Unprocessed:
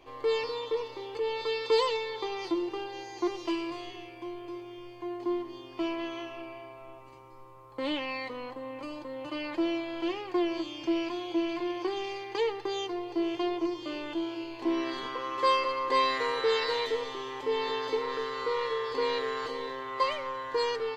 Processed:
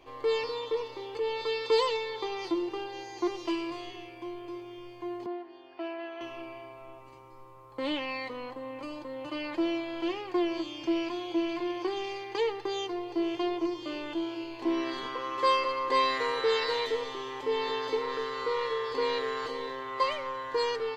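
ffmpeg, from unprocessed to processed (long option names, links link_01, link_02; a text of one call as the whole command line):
ffmpeg -i in.wav -filter_complex "[0:a]asettb=1/sr,asplit=3[link_01][link_02][link_03];[link_01]atrim=end=5.264[link_04];[link_02]atrim=start=5.26:end=6.21,asetpts=PTS-STARTPTS,afade=type=in:duration=0.004:curve=qsin,afade=type=out:start_time=0.946:duration=0.004:curve=qsin,highpass=450,equalizer=frequency=480:width_type=q:width=4:gain=-10,equalizer=frequency=710:width_type=q:width=4:gain=5,equalizer=frequency=1100:width_type=q:width=4:gain=-10,equalizer=frequency=1600:width_type=q:width=4:gain=4,equalizer=frequency=2200:width_type=q:width=4:gain=-6,equalizer=frequency=3300:width_type=q:width=4:gain=-10,lowpass=frequency=3600:width=0.5412,lowpass=frequency=3600:width=1.3066[link_05];[link_03]atrim=start=6.206[link_06];[link_04][link_05]acrossfade=duration=0.004:curve1=hsin:curve2=qsin[link_07];[link_07][link_06]acrossfade=duration=0.004:curve1=qsin:curve2=hsin" out.wav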